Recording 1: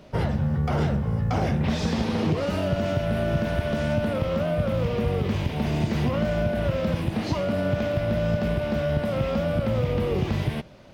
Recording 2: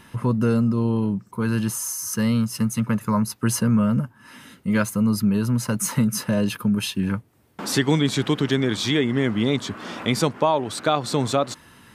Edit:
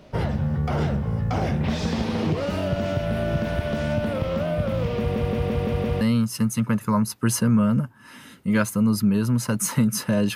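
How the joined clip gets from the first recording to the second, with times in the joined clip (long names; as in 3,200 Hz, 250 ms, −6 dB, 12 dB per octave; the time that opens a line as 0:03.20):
recording 1
0:04.99: stutter in place 0.17 s, 6 plays
0:06.01: continue with recording 2 from 0:02.21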